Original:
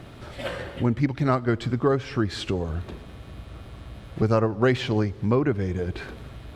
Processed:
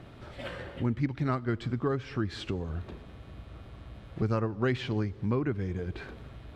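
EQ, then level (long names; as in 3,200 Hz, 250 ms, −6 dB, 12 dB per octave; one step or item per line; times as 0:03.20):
high-shelf EQ 6,200 Hz −9.5 dB
dynamic equaliser 630 Hz, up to −6 dB, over −35 dBFS, Q 1.1
−5.5 dB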